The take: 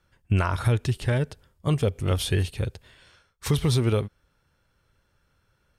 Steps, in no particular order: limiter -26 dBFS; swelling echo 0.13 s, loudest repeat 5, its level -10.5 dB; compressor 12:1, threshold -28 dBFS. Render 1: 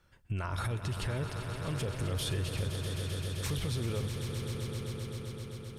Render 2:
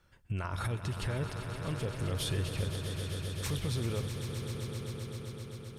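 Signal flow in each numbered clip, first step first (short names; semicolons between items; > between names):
limiter > swelling echo > compressor; compressor > limiter > swelling echo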